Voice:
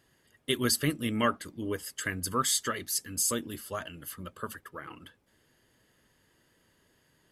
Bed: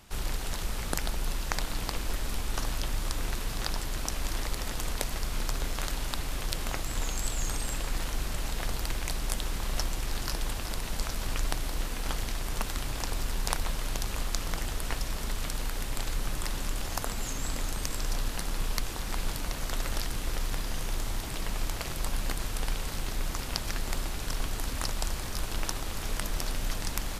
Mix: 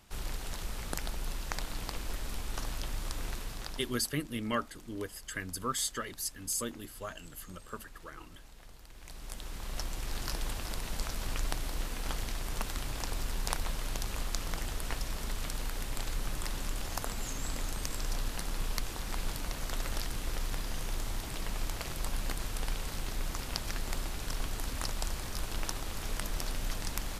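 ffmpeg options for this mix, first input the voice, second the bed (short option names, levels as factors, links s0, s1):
-filter_complex "[0:a]adelay=3300,volume=0.531[s0];[1:a]volume=4.22,afade=t=out:st=3.31:d=0.83:silence=0.158489,afade=t=in:st=8.91:d=1.37:silence=0.125893[s1];[s0][s1]amix=inputs=2:normalize=0"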